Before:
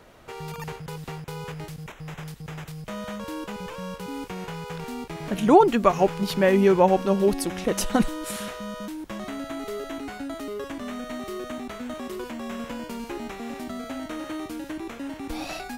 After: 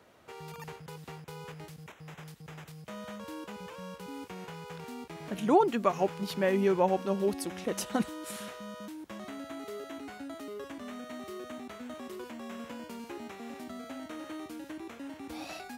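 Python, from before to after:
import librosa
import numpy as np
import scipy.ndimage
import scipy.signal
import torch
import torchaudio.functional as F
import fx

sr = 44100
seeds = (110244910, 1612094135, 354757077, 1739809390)

y = scipy.signal.sosfilt(scipy.signal.butter(4, 71.0, 'highpass', fs=sr, output='sos'), x)
y = fx.peak_eq(y, sr, hz=120.0, db=-4.0, octaves=0.81)
y = y * 10.0 ** (-8.0 / 20.0)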